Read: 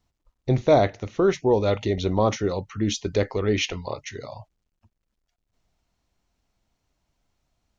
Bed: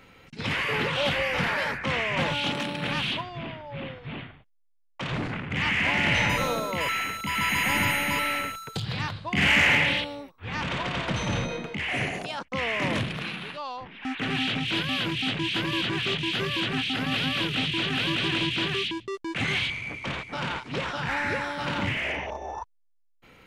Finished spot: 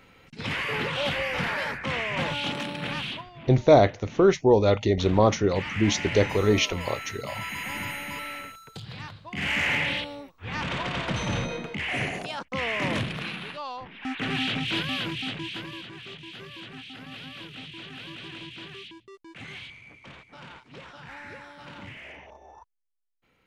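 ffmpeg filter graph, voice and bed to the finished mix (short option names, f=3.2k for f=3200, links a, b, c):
-filter_complex "[0:a]adelay=3000,volume=1.5dB[a];[1:a]volume=6.5dB,afade=t=out:st=2.83:d=0.49:silence=0.446684,afade=t=in:st=9.32:d=1.08:silence=0.375837,afade=t=out:st=14.74:d=1.12:silence=0.199526[b];[a][b]amix=inputs=2:normalize=0"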